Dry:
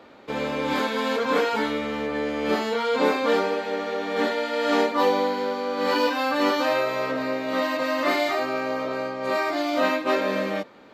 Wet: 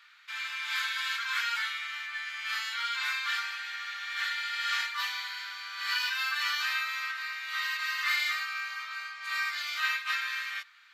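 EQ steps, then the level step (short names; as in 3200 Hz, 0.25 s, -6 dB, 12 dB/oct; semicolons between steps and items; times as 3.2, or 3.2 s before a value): steep high-pass 1400 Hz 36 dB/oct; 0.0 dB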